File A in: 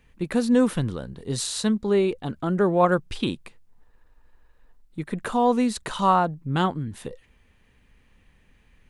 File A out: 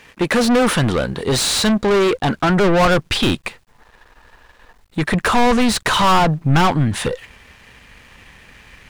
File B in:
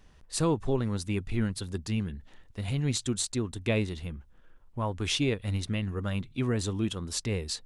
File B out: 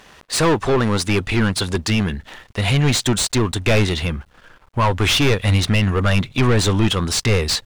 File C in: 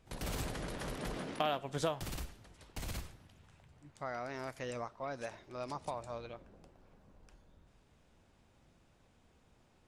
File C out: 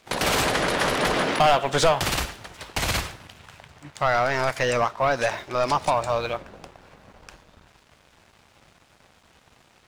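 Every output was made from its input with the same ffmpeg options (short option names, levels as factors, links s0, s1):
-filter_complex "[0:a]asplit=2[s0][s1];[s1]highpass=f=720:p=1,volume=39.8,asoftclip=type=tanh:threshold=0.447[s2];[s0][s2]amix=inputs=2:normalize=0,lowpass=f=4000:p=1,volume=0.501,asubboost=boost=3:cutoff=150,aeval=exprs='sgn(val(0))*max(abs(val(0))-0.00376,0)':c=same"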